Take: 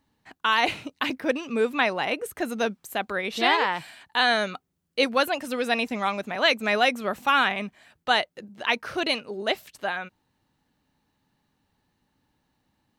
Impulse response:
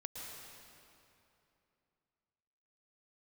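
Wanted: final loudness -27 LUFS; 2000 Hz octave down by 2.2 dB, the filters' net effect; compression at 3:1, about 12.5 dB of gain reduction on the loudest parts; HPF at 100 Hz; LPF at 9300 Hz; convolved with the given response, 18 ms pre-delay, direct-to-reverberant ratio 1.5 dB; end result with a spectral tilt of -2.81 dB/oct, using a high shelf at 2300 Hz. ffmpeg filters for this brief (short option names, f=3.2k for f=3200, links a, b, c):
-filter_complex "[0:a]highpass=100,lowpass=9.3k,equalizer=f=2k:t=o:g=-5.5,highshelf=f=2.3k:g=5,acompressor=threshold=-34dB:ratio=3,asplit=2[a][b];[1:a]atrim=start_sample=2205,adelay=18[c];[b][c]afir=irnorm=-1:irlink=0,volume=0dB[d];[a][d]amix=inputs=2:normalize=0,volume=6.5dB"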